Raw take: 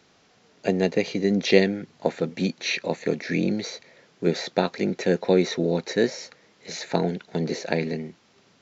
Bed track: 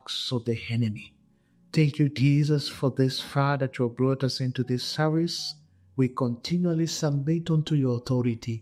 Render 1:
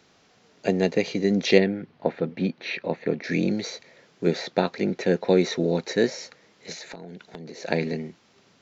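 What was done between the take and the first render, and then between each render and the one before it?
1.58–3.24 s: distance through air 280 m; 4.35–5.29 s: distance through air 63 m; 6.72–7.63 s: compression 16:1, threshold -35 dBFS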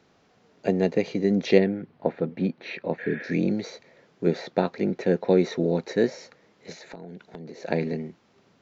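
3.01–3.25 s: spectral replace 470–3600 Hz after; treble shelf 2.1 kHz -9.5 dB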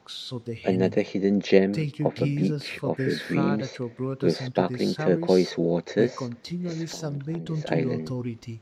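add bed track -6 dB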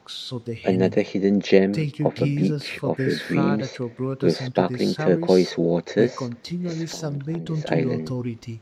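trim +3 dB; peak limiter -2 dBFS, peak gain reduction 1.5 dB

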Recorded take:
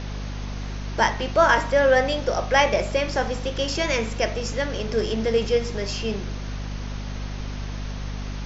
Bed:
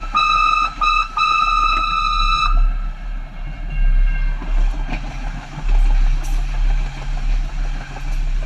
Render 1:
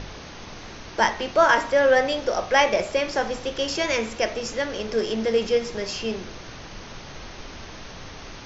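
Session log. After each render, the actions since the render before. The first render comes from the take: hum notches 50/100/150/200/250 Hz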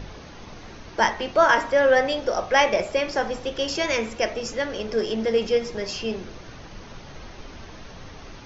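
noise reduction 6 dB, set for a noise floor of -40 dBFS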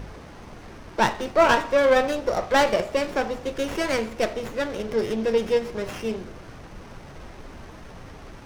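sliding maximum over 9 samples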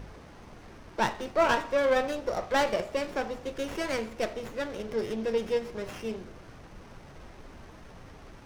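trim -6.5 dB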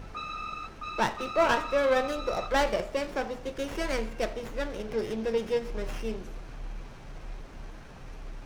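add bed -22.5 dB

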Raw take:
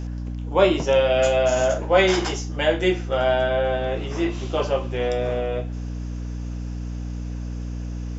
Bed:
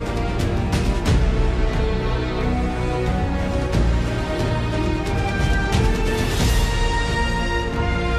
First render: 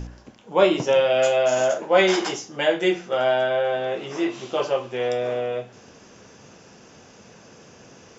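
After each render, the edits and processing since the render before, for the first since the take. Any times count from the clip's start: de-hum 60 Hz, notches 5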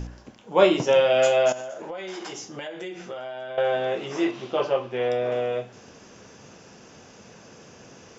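1.52–3.58 s: compression 16:1, threshold -31 dBFS; 4.31–5.32 s: distance through air 140 m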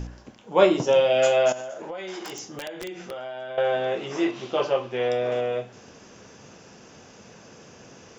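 0.64–1.22 s: peaking EQ 3.3 kHz -> 1.1 kHz -7 dB; 2.20–3.11 s: integer overflow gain 26 dB; 4.36–5.41 s: treble shelf 4.2 kHz +6 dB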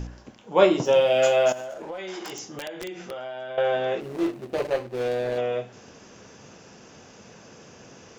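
0.85–1.98 s: hysteresis with a dead band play -45 dBFS; 4.00–5.38 s: median filter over 41 samples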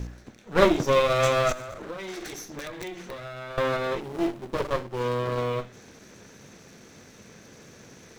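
comb filter that takes the minimum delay 0.5 ms; companded quantiser 8-bit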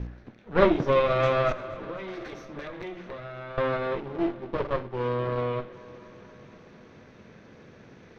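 distance through air 290 m; multi-head delay 242 ms, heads first and second, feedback 63%, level -23.5 dB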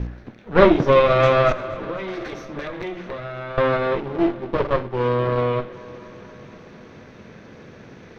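trim +7.5 dB; peak limiter -2 dBFS, peak gain reduction 1.5 dB

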